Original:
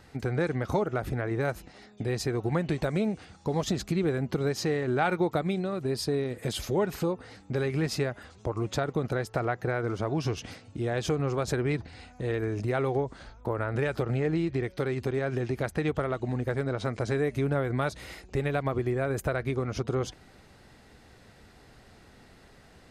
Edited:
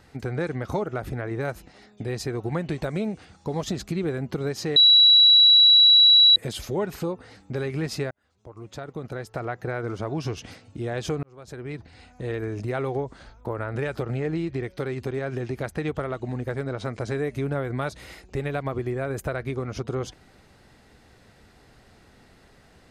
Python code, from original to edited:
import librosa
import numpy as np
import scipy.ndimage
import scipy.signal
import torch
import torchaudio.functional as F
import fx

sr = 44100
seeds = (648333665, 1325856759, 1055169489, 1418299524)

y = fx.edit(x, sr, fx.bleep(start_s=4.76, length_s=1.6, hz=3910.0, db=-11.0),
    fx.fade_in_span(start_s=8.11, length_s=1.68),
    fx.fade_in_span(start_s=11.23, length_s=0.99), tone=tone)